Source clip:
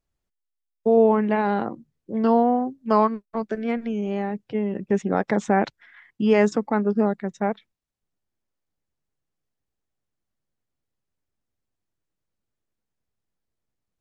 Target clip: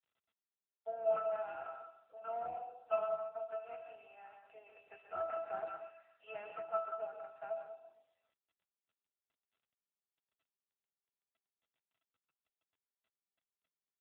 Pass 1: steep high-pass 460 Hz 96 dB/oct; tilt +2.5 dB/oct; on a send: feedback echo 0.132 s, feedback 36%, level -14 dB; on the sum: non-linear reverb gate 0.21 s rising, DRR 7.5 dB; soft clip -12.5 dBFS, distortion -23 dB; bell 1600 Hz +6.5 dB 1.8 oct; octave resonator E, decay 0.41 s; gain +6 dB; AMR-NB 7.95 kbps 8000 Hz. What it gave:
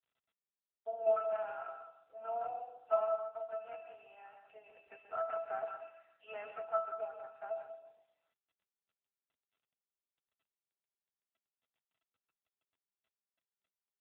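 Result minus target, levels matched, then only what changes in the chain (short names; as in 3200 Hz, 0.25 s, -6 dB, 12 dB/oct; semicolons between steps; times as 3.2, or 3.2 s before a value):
soft clip: distortion -11 dB
change: soft clip -20.5 dBFS, distortion -13 dB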